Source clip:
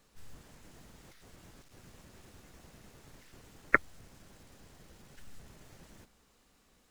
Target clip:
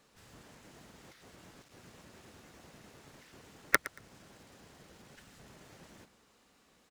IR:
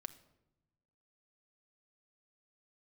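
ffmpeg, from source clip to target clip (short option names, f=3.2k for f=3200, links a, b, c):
-filter_complex "[0:a]highpass=f=170:p=1,highshelf=f=8.2k:g=-7,asplit=2[a][b];[b]aeval=exprs='(mod(2*val(0)+1,2)-1)/2':c=same,volume=-7.5dB[c];[a][c]amix=inputs=2:normalize=0,aeval=exprs='0.708*(cos(1*acos(clip(val(0)/0.708,-1,1)))-cos(1*PI/2))+0.112*(cos(3*acos(clip(val(0)/0.708,-1,1)))-cos(3*PI/2))':c=same,alimiter=limit=-9dB:level=0:latency=1:release=394,asplit=2[d][e];[e]aecho=0:1:115|230:0.141|0.0311[f];[d][f]amix=inputs=2:normalize=0,volume=5.5dB"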